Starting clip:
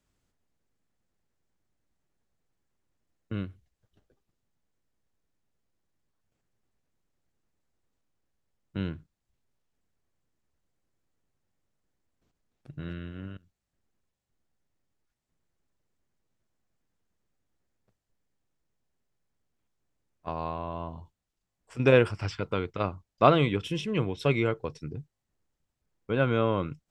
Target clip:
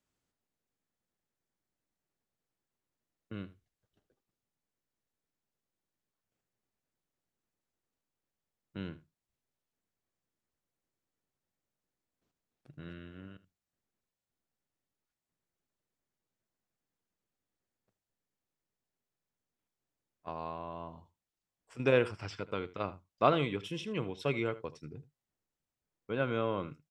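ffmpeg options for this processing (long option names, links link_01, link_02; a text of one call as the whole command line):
ffmpeg -i in.wav -af "lowshelf=frequency=96:gain=-11.5,aecho=1:1:78:0.133,volume=-6dB" out.wav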